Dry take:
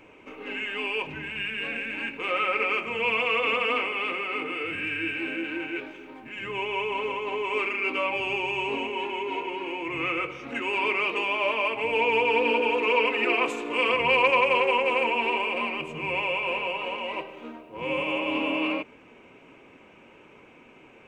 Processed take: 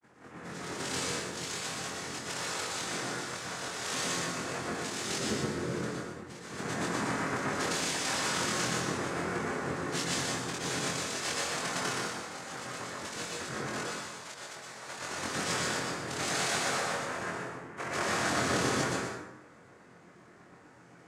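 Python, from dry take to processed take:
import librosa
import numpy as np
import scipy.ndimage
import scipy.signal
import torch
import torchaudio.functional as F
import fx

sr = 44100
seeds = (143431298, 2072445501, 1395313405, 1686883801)

p1 = fx.wiener(x, sr, points=41)
p2 = fx.highpass(p1, sr, hz=980.0, slope=6)
p3 = fx.high_shelf(p2, sr, hz=2600.0, db=-5.5)
p4 = fx.over_compress(p3, sr, threshold_db=-38.0, ratio=-0.5)
p5 = fx.granulator(p4, sr, seeds[0], grain_ms=100.0, per_s=20.0, spray_ms=100.0, spread_st=0)
p6 = fx.noise_vocoder(p5, sr, seeds[1], bands=3)
p7 = fx.doubler(p6, sr, ms=23.0, db=-2.5)
p8 = p7 + fx.echo_single(p7, sr, ms=122, db=-6.0, dry=0)
y = fx.rev_plate(p8, sr, seeds[2], rt60_s=1.0, hf_ratio=0.6, predelay_ms=100, drr_db=-2.5)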